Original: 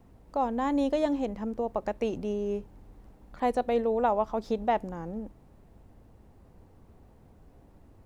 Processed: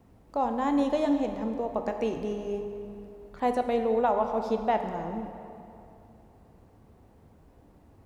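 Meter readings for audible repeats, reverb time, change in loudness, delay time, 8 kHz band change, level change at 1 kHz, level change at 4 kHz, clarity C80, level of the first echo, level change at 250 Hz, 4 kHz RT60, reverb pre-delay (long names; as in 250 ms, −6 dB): no echo audible, 2.7 s, +1.0 dB, no echo audible, can't be measured, +1.5 dB, +1.0 dB, 7.5 dB, no echo audible, +1.5 dB, 1.8 s, 13 ms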